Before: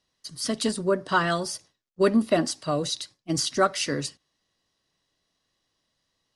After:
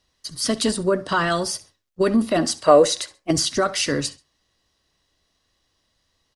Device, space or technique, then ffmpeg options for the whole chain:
car stereo with a boomy subwoofer: -filter_complex "[0:a]lowshelf=frequency=100:width_type=q:width=1.5:gain=6.5,alimiter=limit=-17dB:level=0:latency=1:release=34,asettb=1/sr,asplit=3[link_01][link_02][link_03];[link_01]atrim=end=2.644[link_04];[link_02]atrim=start=2.64:end=3.31,asetpts=PTS-STARTPTS,afade=type=in:duration=0.004:curve=qsin,afade=type=out:start_time=0.666:duration=0.004:curve=qsin,equalizer=frequency=125:width_type=o:width=1:gain=-10,equalizer=frequency=500:width_type=o:width=1:gain=11,equalizer=frequency=1000:width_type=o:width=1:gain=5,equalizer=frequency=2000:width_type=o:width=1:gain=7,equalizer=frequency=4000:width_type=o:width=1:gain=-4,equalizer=frequency=8000:width_type=o:width=1:gain=4[link_05];[link_03]atrim=start=3.306[link_06];[link_04][link_05]acrossfade=duration=0.004:curve1=hsin:curve2=qsin[link_07];[link_07][link_06]acrossfade=duration=0.004:curve1=qsin:curve2=hsin,aecho=1:1:67|134:0.1|0.027,volume=6dB"

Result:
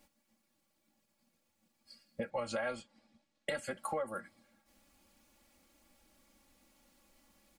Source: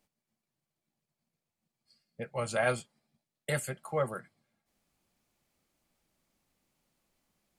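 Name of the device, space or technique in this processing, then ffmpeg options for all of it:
serial compression, leveller first: -filter_complex "[0:a]aecho=1:1:3.6:0.89,acompressor=threshold=-35dB:ratio=1.5,acompressor=threshold=-42dB:ratio=5,asettb=1/sr,asplit=3[link_01][link_02][link_03];[link_01]atrim=end=2.304[link_04];[link_02]atrim=start=2.3:end=3.71,asetpts=PTS-STARTPTS,afade=type=in:duration=0.004:curve=qsin,afade=type=out:start_time=1.406:duration=0.004:curve=qsin,lowpass=5900[link_05];[link_03]atrim=start=3.706[link_06];[link_04][link_05]acrossfade=duration=0.004:curve1=hsin:curve2=qsin[link_07];[link_07][link_06]acrossfade=duration=0.004:curve1=qsin:curve2=hsin,volume=7dB"

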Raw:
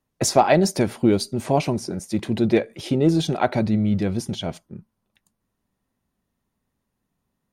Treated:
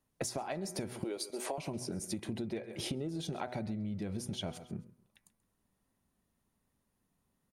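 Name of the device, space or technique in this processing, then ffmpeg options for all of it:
serial compression, leveller first: -filter_complex "[0:a]bandreject=frequency=123.2:width_type=h:width=4,bandreject=frequency=246.4:width_type=h:width=4,bandreject=frequency=369.6:width_type=h:width=4,bandreject=frequency=492.8:width_type=h:width=4,bandreject=frequency=616:width_type=h:width=4,bandreject=frequency=739.2:width_type=h:width=4,bandreject=frequency=862.4:width_type=h:width=4,bandreject=frequency=985.6:width_type=h:width=4,bandreject=frequency=1108.8:width_type=h:width=4,bandreject=frequency=1232:width_type=h:width=4,bandreject=frequency=1355.2:width_type=h:width=4,bandreject=frequency=1478.4:width_type=h:width=4,bandreject=frequency=1601.6:width_type=h:width=4,bandreject=frequency=1724.8:width_type=h:width=4,bandreject=frequency=1848:width_type=h:width=4,bandreject=frequency=1971.2:width_type=h:width=4,bandreject=frequency=2094.4:width_type=h:width=4,bandreject=frequency=2217.6:width_type=h:width=4,bandreject=frequency=2340.8:width_type=h:width=4,bandreject=frequency=2464:width_type=h:width=4,asettb=1/sr,asplit=3[link_01][link_02][link_03];[link_01]atrim=end=1.044[link_04];[link_02]atrim=start=1.04:end=1.58,asetpts=PTS-STARTPTS,afade=type=in:duration=0.004:curve=qsin,afade=type=out:start_time=0.536:duration=0.004:curve=qsin,highpass=frequency=370:width=0.5412,highpass=frequency=370:width=1.3066[link_05];[link_03]atrim=start=1.576[link_06];[link_04][link_05]acrossfade=duration=0.004:curve1=hsin:curve2=qsin[link_07];[link_07][link_06]acrossfade=duration=0.004:curve1=qsin:curve2=hsin,equalizer=frequency=10000:width_type=o:width=0.53:gain=6,aecho=1:1:133|266:0.1|0.029,acompressor=threshold=-23dB:ratio=2.5,acompressor=threshold=-32dB:ratio=10,volume=-2.5dB"

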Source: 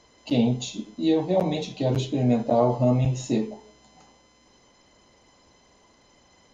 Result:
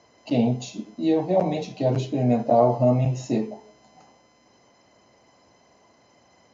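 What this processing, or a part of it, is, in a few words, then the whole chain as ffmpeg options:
car door speaker: -af "highpass=100,equalizer=frequency=110:width_type=q:width=4:gain=4,equalizer=frequency=680:width_type=q:width=4:gain=6,equalizer=frequency=3500:width_type=q:width=4:gain=-9,lowpass=frequency=6500:width=0.5412,lowpass=frequency=6500:width=1.3066"

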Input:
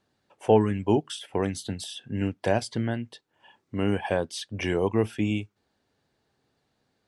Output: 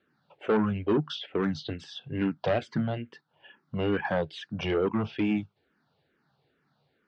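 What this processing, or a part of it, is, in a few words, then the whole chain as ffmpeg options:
barber-pole phaser into a guitar amplifier: -filter_complex "[0:a]asplit=2[link_01][link_02];[link_02]afreqshift=-2.3[link_03];[link_01][link_03]amix=inputs=2:normalize=1,asoftclip=type=tanh:threshold=-23dB,lowpass=8000,highpass=89,equalizer=frequency=110:width_type=q:width=4:gain=-4,equalizer=frequency=150:width_type=q:width=4:gain=9,equalizer=frequency=1400:width_type=q:width=4:gain=7,lowpass=frequency=4500:width=0.5412,lowpass=frequency=4500:width=1.3066,volume=3.5dB"

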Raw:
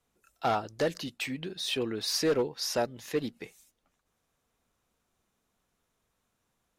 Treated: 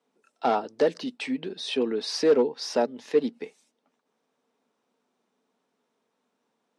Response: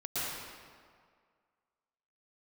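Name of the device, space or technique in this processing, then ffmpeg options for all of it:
television speaker: -af "highpass=frequency=180:width=0.5412,highpass=frequency=180:width=1.3066,equalizer=frequency=250:width_type=q:width=4:gain=9,equalizer=frequency=440:width_type=q:width=4:gain=9,equalizer=frequency=620:width_type=q:width=4:gain=3,equalizer=frequency=890:width_type=q:width=4:gain=6,equalizer=frequency=6900:width_type=q:width=4:gain=-7,lowpass=frequency=8200:width=0.5412,lowpass=frequency=8200:width=1.3066"

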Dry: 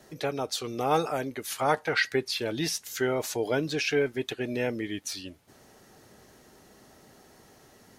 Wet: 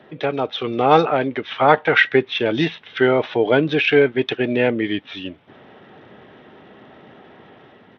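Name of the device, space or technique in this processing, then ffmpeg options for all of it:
Bluetooth headset: -af "highpass=120,dynaudnorm=framelen=130:gausssize=7:maxgain=3.5dB,aresample=8000,aresample=44100,volume=8dB" -ar 32000 -c:a sbc -b:a 64k

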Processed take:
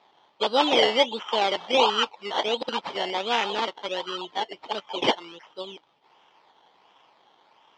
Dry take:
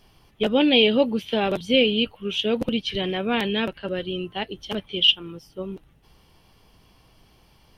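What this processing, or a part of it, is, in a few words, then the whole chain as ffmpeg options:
circuit-bent sampling toy: -af "acrusher=samples=14:mix=1:aa=0.000001:lfo=1:lforange=8.4:lforate=1.4,highpass=510,equalizer=frequency=890:width_type=q:width=4:gain=9,equalizer=frequency=1600:width_type=q:width=4:gain=-4,equalizer=frequency=3200:width_type=q:width=4:gain=10,lowpass=frequency=5100:width=0.5412,lowpass=frequency=5100:width=1.3066"

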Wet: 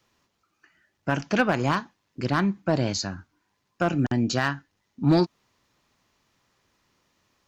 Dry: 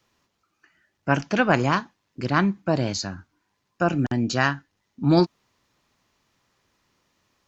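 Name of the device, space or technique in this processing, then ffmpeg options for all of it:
limiter into clipper: -af "alimiter=limit=-9.5dB:level=0:latency=1:release=180,asoftclip=type=hard:threshold=-12.5dB"

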